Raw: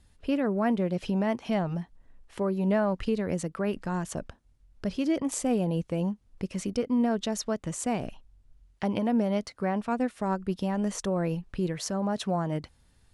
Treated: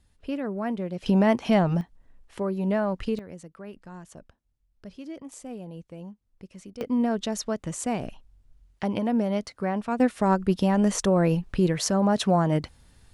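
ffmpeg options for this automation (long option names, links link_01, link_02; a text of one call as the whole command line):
ffmpeg -i in.wav -af "asetnsamples=nb_out_samples=441:pad=0,asendcmd='1.06 volume volume 7dB;1.81 volume volume 0dB;3.19 volume volume -12dB;6.81 volume volume 1dB;10 volume volume 7dB',volume=-3.5dB" out.wav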